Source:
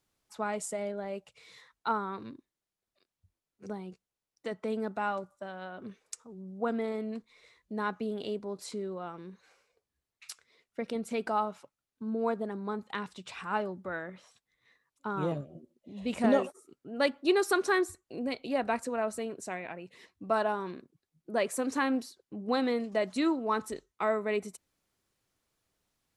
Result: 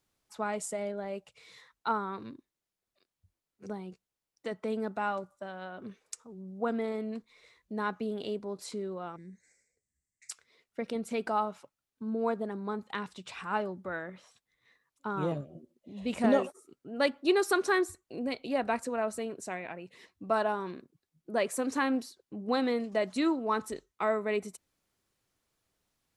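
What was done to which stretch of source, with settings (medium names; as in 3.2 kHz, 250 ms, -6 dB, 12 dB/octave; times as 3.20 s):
9.16–10.31 s: FFT filter 220 Hz 0 dB, 390 Hz -9 dB, 670 Hz -14 dB, 1.2 kHz -28 dB, 2 kHz +4 dB, 2.9 kHz -27 dB, 4.5 kHz -8 dB, 7.8 kHz +10 dB, 12 kHz -12 dB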